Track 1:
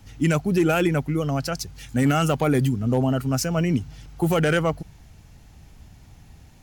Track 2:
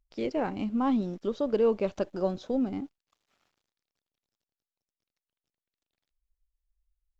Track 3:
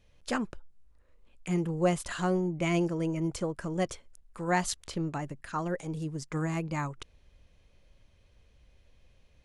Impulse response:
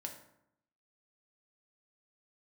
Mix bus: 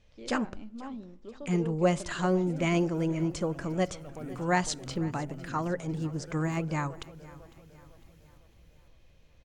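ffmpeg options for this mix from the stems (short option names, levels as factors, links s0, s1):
-filter_complex "[0:a]asoftclip=type=hard:threshold=0.211,highshelf=f=11000:g=11.5,acrossover=split=1100|3300[s0][s1][s2];[s0]acompressor=threshold=0.0708:ratio=4[s3];[s1]acompressor=threshold=0.00447:ratio=4[s4];[s2]acompressor=threshold=0.00224:ratio=4[s5];[s3][s4][s5]amix=inputs=3:normalize=0,adelay=1750,volume=0.168,asplit=2[s6][s7];[s7]volume=0.596[s8];[1:a]volume=0.158,asplit=2[s9][s10];[s10]volume=0.299[s11];[2:a]lowpass=f=8100:w=0.5412,lowpass=f=8100:w=1.3066,volume=1.06,asplit=4[s12][s13][s14][s15];[s13]volume=0.158[s16];[s14]volume=0.106[s17];[s15]apad=whole_len=369321[s18];[s6][s18]sidechaincompress=threshold=0.00708:ratio=8:attack=16:release=219[s19];[3:a]atrim=start_sample=2205[s20];[s11][s16]amix=inputs=2:normalize=0[s21];[s21][s20]afir=irnorm=-1:irlink=0[s22];[s8][s17]amix=inputs=2:normalize=0,aecho=0:1:503|1006|1509|2012|2515|3018:1|0.46|0.212|0.0973|0.0448|0.0206[s23];[s19][s9][s12][s22][s23]amix=inputs=5:normalize=0"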